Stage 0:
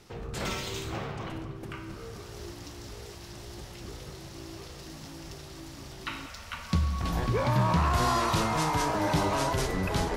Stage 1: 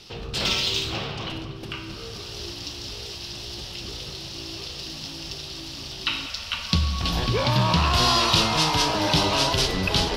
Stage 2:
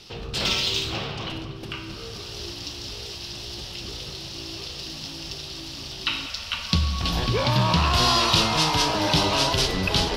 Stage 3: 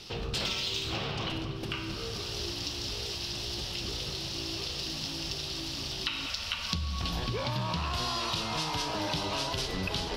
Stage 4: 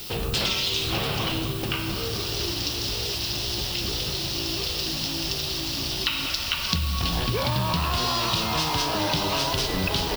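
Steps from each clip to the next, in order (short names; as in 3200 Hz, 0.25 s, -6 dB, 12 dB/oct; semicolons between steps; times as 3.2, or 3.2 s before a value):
band shelf 3800 Hz +12.5 dB 1.3 oct; gain +3.5 dB
nothing audible
compressor 10:1, threshold -29 dBFS, peak gain reduction 14 dB
added noise violet -47 dBFS; echo 0.69 s -12.5 dB; gain +7 dB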